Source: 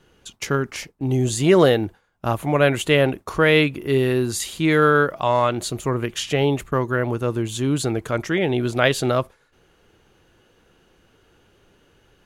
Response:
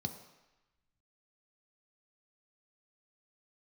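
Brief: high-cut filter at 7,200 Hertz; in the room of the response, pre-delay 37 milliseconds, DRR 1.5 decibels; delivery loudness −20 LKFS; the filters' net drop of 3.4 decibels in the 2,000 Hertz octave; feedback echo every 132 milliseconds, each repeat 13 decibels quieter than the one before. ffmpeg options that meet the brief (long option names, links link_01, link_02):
-filter_complex "[0:a]lowpass=7200,equalizer=frequency=2000:width_type=o:gain=-4.5,aecho=1:1:132|264|396:0.224|0.0493|0.0108,asplit=2[link_01][link_02];[1:a]atrim=start_sample=2205,adelay=37[link_03];[link_02][link_03]afir=irnorm=-1:irlink=0,volume=-1.5dB[link_04];[link_01][link_04]amix=inputs=2:normalize=0,volume=-5dB"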